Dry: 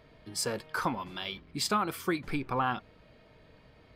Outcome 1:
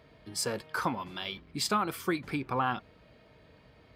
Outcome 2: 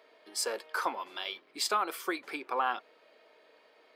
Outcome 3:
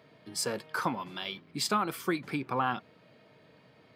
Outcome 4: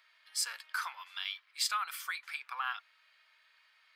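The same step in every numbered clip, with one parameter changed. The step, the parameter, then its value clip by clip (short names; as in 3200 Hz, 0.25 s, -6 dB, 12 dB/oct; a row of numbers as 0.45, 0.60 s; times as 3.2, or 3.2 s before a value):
HPF, cutoff: 43, 380, 120, 1300 Hz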